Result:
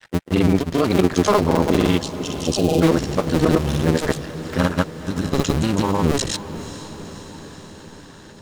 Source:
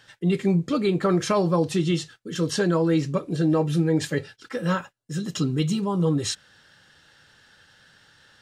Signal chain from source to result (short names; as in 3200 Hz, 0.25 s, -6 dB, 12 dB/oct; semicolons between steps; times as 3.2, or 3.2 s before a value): cycle switcher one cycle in 2, muted; grains; spectral delete 2.03–2.81, 830–2400 Hz; diffused feedback echo 0.494 s, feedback 67%, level -14 dB; gain +8.5 dB